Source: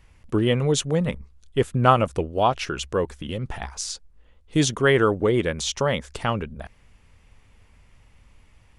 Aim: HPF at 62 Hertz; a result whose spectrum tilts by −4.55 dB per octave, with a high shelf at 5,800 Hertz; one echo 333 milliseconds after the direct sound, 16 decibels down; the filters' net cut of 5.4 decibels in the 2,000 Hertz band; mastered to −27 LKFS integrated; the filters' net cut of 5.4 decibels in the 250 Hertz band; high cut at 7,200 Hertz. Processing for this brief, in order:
high-pass filter 62 Hz
low-pass filter 7,200 Hz
parametric band 250 Hz −8 dB
parametric band 2,000 Hz −7.5 dB
high-shelf EQ 5,800 Hz +5 dB
single-tap delay 333 ms −16 dB
level −1 dB

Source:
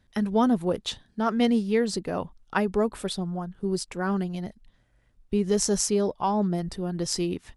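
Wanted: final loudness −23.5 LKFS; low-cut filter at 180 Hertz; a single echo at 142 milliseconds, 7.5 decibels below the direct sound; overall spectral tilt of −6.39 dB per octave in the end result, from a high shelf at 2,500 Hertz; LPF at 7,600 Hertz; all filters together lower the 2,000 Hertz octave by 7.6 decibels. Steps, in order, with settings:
high-pass filter 180 Hz
low-pass filter 7,600 Hz
parametric band 2,000 Hz −7.5 dB
high-shelf EQ 2,500 Hz −7.5 dB
single-tap delay 142 ms −7.5 dB
level +4.5 dB

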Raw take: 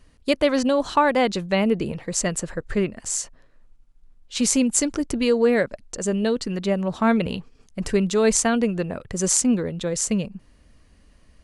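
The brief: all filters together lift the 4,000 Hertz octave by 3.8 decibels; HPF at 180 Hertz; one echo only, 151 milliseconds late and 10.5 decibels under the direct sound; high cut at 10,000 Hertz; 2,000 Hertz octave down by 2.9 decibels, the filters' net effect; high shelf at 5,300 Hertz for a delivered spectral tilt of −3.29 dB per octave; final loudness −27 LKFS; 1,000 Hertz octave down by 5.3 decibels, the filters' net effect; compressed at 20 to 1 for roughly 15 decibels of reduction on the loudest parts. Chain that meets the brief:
high-pass filter 180 Hz
low-pass filter 10,000 Hz
parametric band 1,000 Hz −6.5 dB
parametric band 2,000 Hz −3.5 dB
parametric band 4,000 Hz +4 dB
high-shelf EQ 5,300 Hz +5.5 dB
downward compressor 20 to 1, threshold −28 dBFS
single-tap delay 151 ms −10.5 dB
level +5 dB

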